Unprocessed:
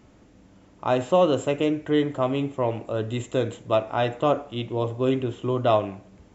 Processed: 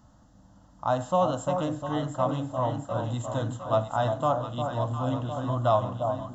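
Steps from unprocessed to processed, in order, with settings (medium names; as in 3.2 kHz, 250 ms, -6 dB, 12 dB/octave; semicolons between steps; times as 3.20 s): static phaser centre 970 Hz, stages 4; echo whose repeats swap between lows and highs 353 ms, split 1 kHz, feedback 79%, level -5.5 dB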